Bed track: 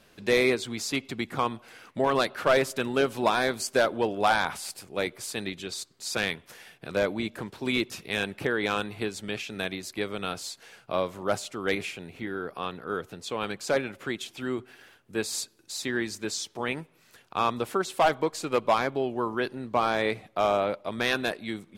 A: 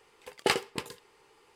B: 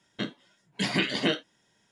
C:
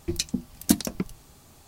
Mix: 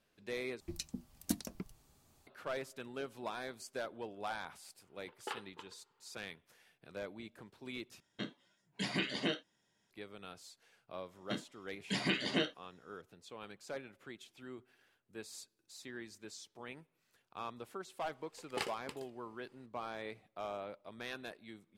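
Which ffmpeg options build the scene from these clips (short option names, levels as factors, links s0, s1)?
-filter_complex "[1:a]asplit=2[s0][s1];[2:a]asplit=2[s2][s3];[0:a]volume=0.126[s4];[s0]highpass=340,equalizer=f=630:t=q:w=4:g=-7,equalizer=f=930:t=q:w=4:g=7,equalizer=f=1400:t=q:w=4:g=7,equalizer=f=2200:t=q:w=4:g=-6,equalizer=f=3400:t=q:w=4:g=4,lowpass=f=3500:w=0.5412,lowpass=f=3500:w=1.3066[s5];[s4]asplit=3[s6][s7][s8];[s6]atrim=end=0.604[s9];[3:a]atrim=end=1.67,asetpts=PTS-STARTPTS,volume=0.178[s10];[s7]atrim=start=2.266:end=8.004[s11];[s2]atrim=end=1.91,asetpts=PTS-STARTPTS,volume=0.335[s12];[s8]atrim=start=9.906[s13];[s5]atrim=end=1.55,asetpts=PTS-STARTPTS,volume=0.158,afade=t=in:d=0.004:c=hsin,afade=t=out:st=1.546:d=0.004:c=hsin,adelay=212121S[s14];[s3]atrim=end=1.91,asetpts=PTS-STARTPTS,volume=0.422,afade=t=in:d=0.004:c=hsin,afade=t=out:st=1.906:d=0.004:c=hsin,adelay=11110[s15];[s1]atrim=end=1.55,asetpts=PTS-STARTPTS,volume=0.237,afade=t=in:d=0.004:c=hsin,afade=t=out:st=1.546:d=0.004:c=hsin,adelay=18110[s16];[s9][s10]acrossfade=d=0.004:c1=hsin:c2=hsin[s17];[s17][s11]acrossfade=d=0.004:c1=hsin:c2=hsin[s18];[s18][s12]acrossfade=d=0.004:c1=hsin:c2=hsin[s19];[s19][s13]acrossfade=d=0.004:c1=hsin:c2=hsin[s20];[s20][s14][s15][s16]amix=inputs=4:normalize=0"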